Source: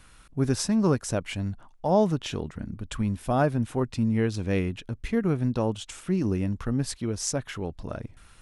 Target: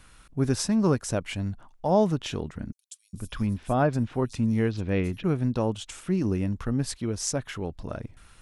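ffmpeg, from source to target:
-filter_complex "[0:a]asettb=1/sr,asplit=3[a][b][c];[a]atrim=end=2.724[d];[b]atrim=start=2.72:end=5.24,asetpts=PTS-STARTPTS,afade=t=in:d=0.004:c=qsin,afade=t=out:st=2.516:d=0.004:c=qsin,acrossover=split=4800[e][f];[e]adelay=410[g];[g][f]amix=inputs=2:normalize=0,atrim=end_sample=111132[h];[c]atrim=start=5.236[i];[d][h]acrossfade=d=0.004:c1=hsin:c2=qsin[j];[j][i]acrossfade=d=0.004:c1=qsin:c2=hsin"

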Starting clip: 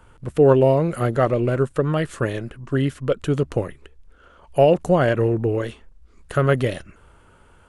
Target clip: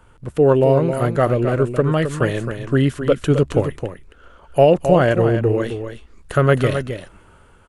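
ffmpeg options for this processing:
-filter_complex "[0:a]dynaudnorm=f=490:g=3:m=5.5dB,asplit=2[a][b];[b]aecho=0:1:264:0.376[c];[a][c]amix=inputs=2:normalize=0"

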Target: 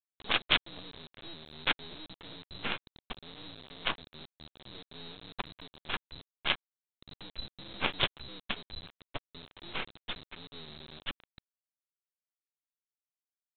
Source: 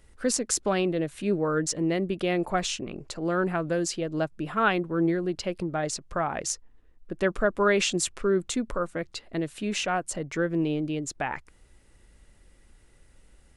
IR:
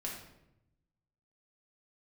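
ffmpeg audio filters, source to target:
-af "afftfilt=real='real(if(lt(b,736),b+184*(1-2*mod(floor(b/184),2)),b),0)':imag='imag(if(lt(b,736),b+184*(1-2*mod(floor(b/184),2)),b),0)':win_size=2048:overlap=0.75,bandreject=f=1.9k:w=7.3,aresample=8000,acrusher=bits=5:dc=4:mix=0:aa=0.000001,aresample=44100,volume=4dB"

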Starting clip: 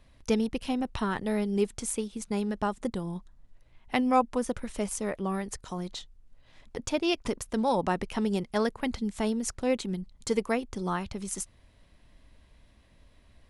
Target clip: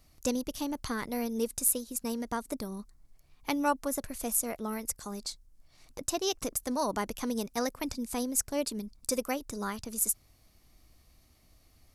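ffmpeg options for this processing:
-af "aexciter=amount=4:drive=3.5:freq=4.1k,asetrate=49833,aresample=44100,volume=-4.5dB"

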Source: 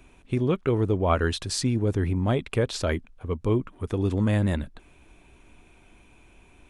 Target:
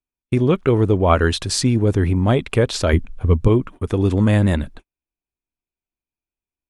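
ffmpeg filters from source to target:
-filter_complex "[0:a]asettb=1/sr,asplit=3[a][b][c];[a]atrim=end=2.934[d];[b]atrim=start=2.93:end=3.48,asetpts=PTS-STARTPTS,afade=t=in:d=0.004:c=qsin,afade=t=out:st=0.546:d=0.004:c=qsin,lowshelf=f=170:g=11.5[e];[c]atrim=start=3.476[f];[d][e]acrossfade=d=0.004:c1=hsin:c2=qsin[g];[g][f]acrossfade=d=0.004:c1=qsin:c2=hsin,agate=range=-48dB:threshold=-42dB:ratio=16:detection=peak,volume=7.5dB"

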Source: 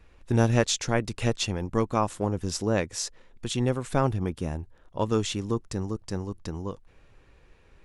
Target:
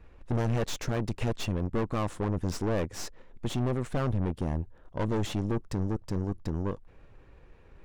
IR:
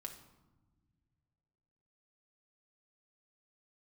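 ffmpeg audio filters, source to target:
-af "aeval=exprs='(tanh(39.8*val(0)+0.7)-tanh(0.7))/39.8':c=same,highshelf=f=2.4k:g=-12,volume=7dB"

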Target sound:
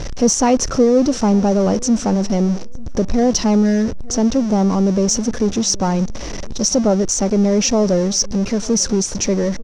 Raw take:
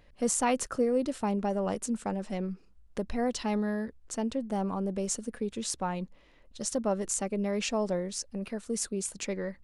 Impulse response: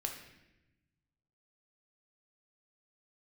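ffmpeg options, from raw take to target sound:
-filter_complex "[0:a]aeval=exprs='val(0)+0.5*0.02*sgn(val(0))':c=same,lowpass=f=5.8k:t=q:w=10,tiltshelf=f=970:g=7,asplit=2[a][b];[b]asoftclip=type=tanh:threshold=-21dB,volume=-10dB[c];[a][c]amix=inputs=2:normalize=0,asplit=2[d][e];[e]adelay=895,lowpass=f=2.2k:p=1,volume=-23dB,asplit=2[f][g];[g]adelay=895,lowpass=f=2.2k:p=1,volume=0.23[h];[d][f][h]amix=inputs=3:normalize=0,volume=6.5dB"

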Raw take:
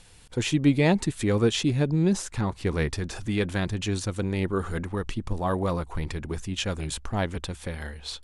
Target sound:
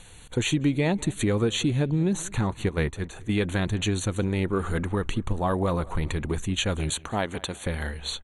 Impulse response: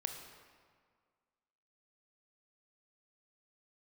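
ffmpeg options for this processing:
-filter_complex "[0:a]asettb=1/sr,asplit=3[a][b][c];[a]atrim=end=2.694[d];[b]atrim=start=2.69:end=3.38,asetpts=PTS-STARTPTS,afade=t=in:d=0.004:c=qsin,afade=t=out:st=0.686:d=0.004:c=qsin,agate=range=-10dB:threshold=-27dB:ratio=16:detection=peak[e];[c]atrim=start=3.376[f];[d][e]acrossfade=d=0.004:c1=hsin:c2=qsin[g];[g][f]acrossfade=d=0.004:c1=qsin:c2=hsin,asettb=1/sr,asplit=3[h][i][j];[h]atrim=end=6.904[k];[i]atrim=start=6.9:end=7.66,asetpts=PTS-STARTPTS,afade=t=in:d=0.004:c=qsin,afade=t=out:st=0.756:d=0.004:c=qsin,highpass=f=270:p=1[l];[j]atrim=start=7.656[m];[k][l]acrossfade=d=0.004:c1=hsin:c2=qsin[n];[n][m]acrossfade=d=0.004:c1=qsin:c2=hsin,acompressor=threshold=-27dB:ratio=3,asuperstop=centerf=5100:order=20:qfactor=3.6,asplit=2[o][p];[p]adelay=193,lowpass=f=3.2k:p=1,volume=-22dB,asplit=2[q][r];[r]adelay=193,lowpass=f=3.2k:p=1,volume=0.47,asplit=2[s][t];[t]adelay=193,lowpass=f=3.2k:p=1,volume=0.47[u];[o][q][s][u]amix=inputs=4:normalize=0,volume=5dB"

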